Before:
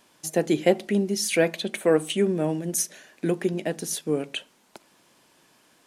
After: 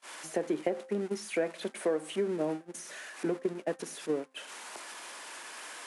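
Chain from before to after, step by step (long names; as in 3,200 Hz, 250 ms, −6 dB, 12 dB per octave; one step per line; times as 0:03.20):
spike at every zero crossing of −16.5 dBFS
high-shelf EQ 7,700 Hz −4.5 dB
noise gate −25 dBFS, range −32 dB
Butterworth low-pass 11,000 Hz 96 dB per octave
downward compressor 12 to 1, threshold −24 dBFS, peak gain reduction 12 dB
three-way crossover with the lows and the highs turned down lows −14 dB, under 250 Hz, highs −18 dB, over 2,000 Hz
hum removal 262.3 Hz, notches 7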